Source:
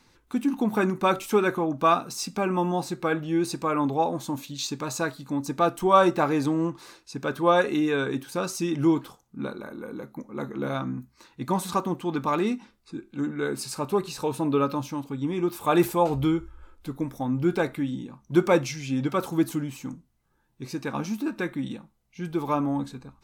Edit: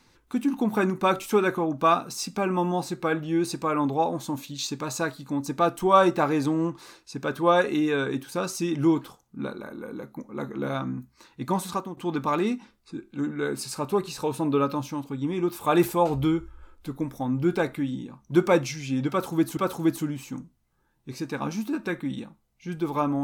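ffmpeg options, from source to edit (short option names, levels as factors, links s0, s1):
-filter_complex "[0:a]asplit=3[s0][s1][s2];[s0]atrim=end=11.97,asetpts=PTS-STARTPTS,afade=t=out:st=11.45:d=0.52:c=qsin:silence=0.211349[s3];[s1]atrim=start=11.97:end=19.572,asetpts=PTS-STARTPTS,afade=t=in:d=0.004:c=hsin:silence=0.211349[s4];[s2]atrim=start=19.098[s5];[s3][s4]concat=n=2:v=0:a=1[s6];[s6][s5]acrossfade=d=0.004:c1=hsin:c2=hsin"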